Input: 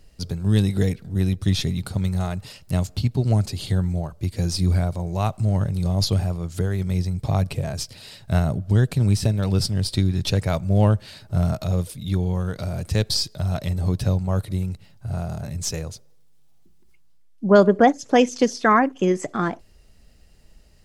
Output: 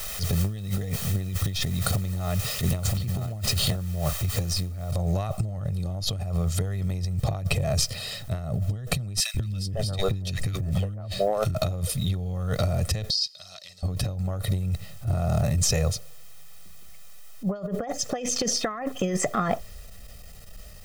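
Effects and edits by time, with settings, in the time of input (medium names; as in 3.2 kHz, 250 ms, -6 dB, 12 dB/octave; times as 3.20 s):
1.62–3.76 s: delay 968 ms -4.5 dB
4.91 s: noise floor step -42 dB -61 dB
9.20–11.55 s: three bands offset in time highs, lows, mids 140/500 ms, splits 330/1600 Hz
13.10–13.83 s: band-pass filter 4.7 kHz, Q 3.4
whole clip: comb 1.6 ms, depth 77%; transient shaper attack -11 dB, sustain +1 dB; compressor with a negative ratio -27 dBFS, ratio -1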